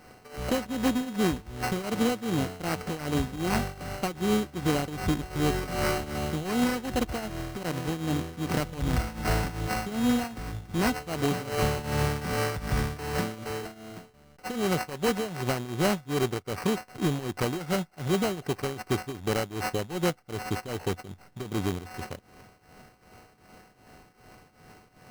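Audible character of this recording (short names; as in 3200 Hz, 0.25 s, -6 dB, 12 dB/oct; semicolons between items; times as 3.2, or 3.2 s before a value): a buzz of ramps at a fixed pitch in blocks of 16 samples; tremolo triangle 2.6 Hz, depth 85%; aliases and images of a low sample rate 3500 Hz, jitter 0%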